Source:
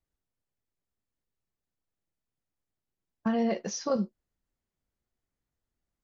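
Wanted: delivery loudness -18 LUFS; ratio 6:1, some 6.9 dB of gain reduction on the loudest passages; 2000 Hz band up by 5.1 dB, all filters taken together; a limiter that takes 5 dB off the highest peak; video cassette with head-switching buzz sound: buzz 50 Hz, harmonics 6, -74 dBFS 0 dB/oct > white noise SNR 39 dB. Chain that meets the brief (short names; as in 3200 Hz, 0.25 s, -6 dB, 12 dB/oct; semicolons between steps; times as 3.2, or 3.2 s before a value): bell 2000 Hz +6 dB; compressor 6:1, threshold -31 dBFS; limiter -26 dBFS; buzz 50 Hz, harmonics 6, -74 dBFS 0 dB/oct; white noise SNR 39 dB; gain +19 dB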